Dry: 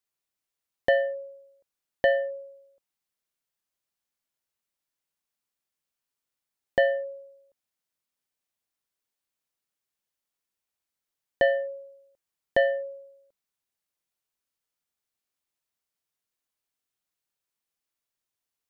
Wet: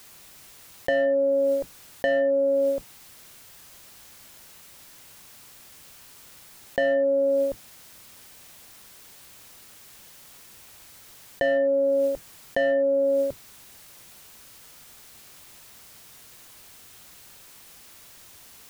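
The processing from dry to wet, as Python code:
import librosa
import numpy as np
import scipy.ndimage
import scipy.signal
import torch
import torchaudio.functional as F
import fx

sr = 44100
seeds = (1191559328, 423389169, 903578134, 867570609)

p1 = fx.octave_divider(x, sr, octaves=1, level_db=-1.0)
p2 = np.clip(10.0 ** (24.5 / 20.0) * p1, -1.0, 1.0) / 10.0 ** (24.5 / 20.0)
p3 = p1 + (p2 * librosa.db_to_amplitude(-8.0))
p4 = fx.env_flatten(p3, sr, amount_pct=100)
y = p4 * librosa.db_to_amplitude(-5.0)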